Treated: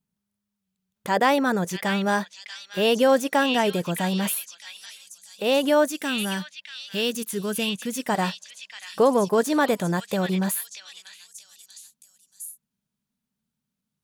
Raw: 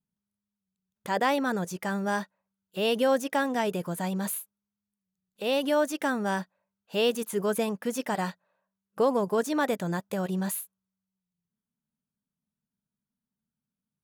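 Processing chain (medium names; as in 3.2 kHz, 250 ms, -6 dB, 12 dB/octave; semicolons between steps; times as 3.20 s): 5.88–8.09 s: peaking EQ 730 Hz -12 dB 2.1 oct; on a send: repeats whose band climbs or falls 635 ms, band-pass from 3.1 kHz, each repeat 0.7 oct, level -1 dB; on the sum: trim +5.5 dB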